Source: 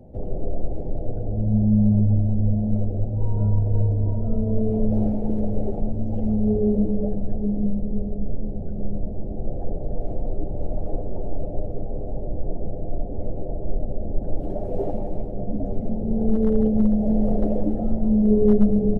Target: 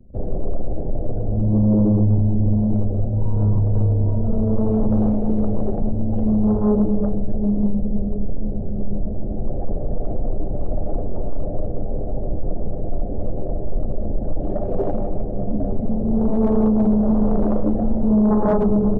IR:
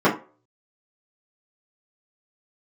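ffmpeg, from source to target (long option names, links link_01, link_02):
-filter_complex "[0:a]asplit=2[link_01][link_02];[1:a]atrim=start_sample=2205,asetrate=57330,aresample=44100,lowshelf=frequency=200:gain=4[link_03];[link_02][link_03]afir=irnorm=-1:irlink=0,volume=-40dB[link_04];[link_01][link_04]amix=inputs=2:normalize=0,anlmdn=1.58,aeval=exprs='0.596*sin(PI/2*2.82*val(0)/0.596)':channel_layout=same,bandreject=frequency=84.51:width_type=h:width=4,bandreject=frequency=169.02:width_type=h:width=4,bandreject=frequency=253.53:width_type=h:width=4,bandreject=frequency=338.04:width_type=h:width=4,bandreject=frequency=422.55:width_type=h:width=4,bandreject=frequency=507.06:width_type=h:width=4,bandreject=frequency=591.57:width_type=h:width=4,bandreject=frequency=676.08:width_type=h:width=4,bandreject=frequency=760.59:width_type=h:width=4,bandreject=frequency=845.1:width_type=h:width=4,bandreject=frequency=929.61:width_type=h:width=4,bandreject=frequency=1014.12:width_type=h:width=4,bandreject=frequency=1098.63:width_type=h:width=4,bandreject=frequency=1183.14:width_type=h:width=4,bandreject=frequency=1267.65:width_type=h:width=4,bandreject=frequency=1352.16:width_type=h:width=4,volume=-7.5dB"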